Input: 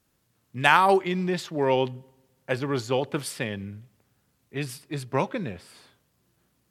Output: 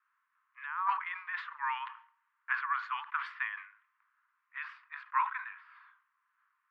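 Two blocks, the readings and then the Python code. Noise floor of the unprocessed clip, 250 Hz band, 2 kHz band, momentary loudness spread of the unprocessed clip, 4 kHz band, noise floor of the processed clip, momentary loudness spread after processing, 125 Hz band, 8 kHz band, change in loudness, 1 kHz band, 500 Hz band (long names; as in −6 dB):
−71 dBFS, below −40 dB, −7.0 dB, 18 LU, −17.5 dB, −80 dBFS, 15 LU, below −40 dB, below −35 dB, −10.5 dB, −8.0 dB, below −40 dB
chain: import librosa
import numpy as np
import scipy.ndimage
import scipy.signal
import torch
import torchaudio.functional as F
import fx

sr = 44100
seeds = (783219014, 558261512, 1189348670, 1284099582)

y = scipy.signal.sosfilt(scipy.signal.butter(16, 1000.0, 'highpass', fs=sr, output='sos'), x)
y = fx.over_compress(y, sr, threshold_db=-30.0, ratio=-1.0)
y = scipy.signal.sosfilt(scipy.signal.butter(4, 1700.0, 'lowpass', fs=sr, output='sos'), y)
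y = fx.sustainer(y, sr, db_per_s=120.0)
y = y * 10.0 ** (1.5 / 20.0)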